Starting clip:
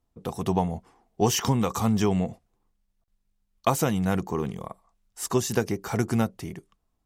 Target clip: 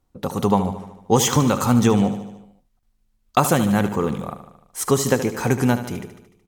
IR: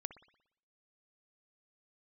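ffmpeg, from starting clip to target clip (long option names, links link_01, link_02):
-filter_complex "[0:a]asplit=2[link_01][link_02];[link_02]aecho=0:1:81|162|243|324|405|486|567:0.266|0.157|0.0926|0.0546|0.0322|0.019|0.0112[link_03];[link_01][link_03]amix=inputs=2:normalize=0,asetrate=48000,aresample=44100,volume=6dB"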